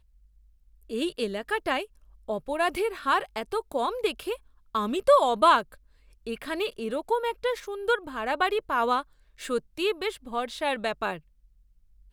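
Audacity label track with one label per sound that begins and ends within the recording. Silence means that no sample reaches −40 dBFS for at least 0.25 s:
0.900000	1.850000	sound
2.280000	4.360000	sound
4.750000	5.740000	sound
6.270000	9.020000	sound
9.390000	11.180000	sound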